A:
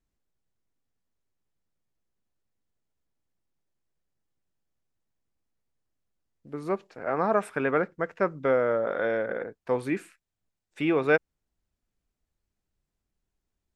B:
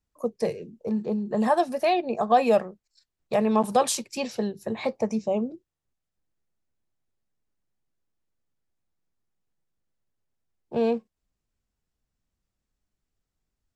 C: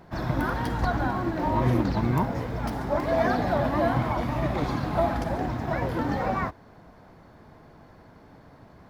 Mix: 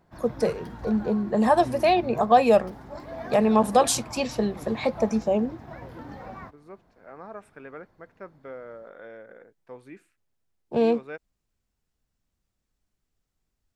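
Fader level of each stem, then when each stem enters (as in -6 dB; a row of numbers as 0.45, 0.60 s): -16.5, +2.5, -13.5 dB; 0.00, 0.00, 0.00 s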